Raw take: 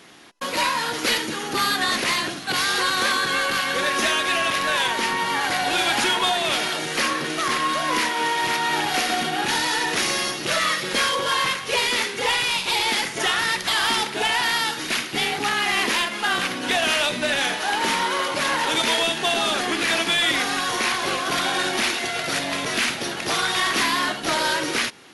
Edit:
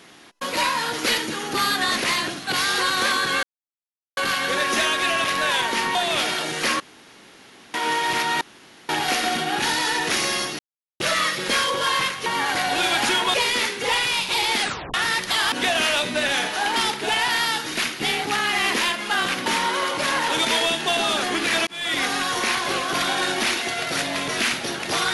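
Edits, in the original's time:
3.43 s: insert silence 0.74 s
5.21–6.29 s: move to 11.71 s
7.14–8.08 s: room tone
8.75 s: insert room tone 0.48 s
10.45 s: insert silence 0.41 s
12.98 s: tape stop 0.33 s
16.59–17.83 s: move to 13.89 s
20.04–20.41 s: fade in

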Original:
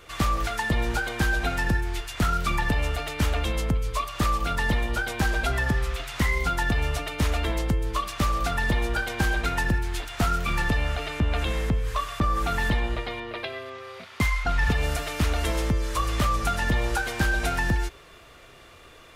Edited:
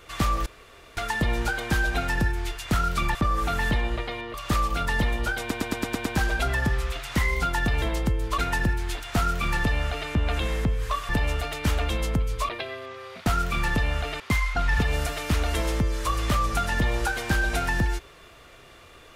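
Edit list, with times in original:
0.46 s: insert room tone 0.51 s
2.64–4.04 s: swap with 12.14–13.33 s
5.10 s: stutter 0.11 s, 7 plays
6.86–7.45 s: delete
8.01–9.43 s: delete
10.20–11.14 s: copy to 14.10 s

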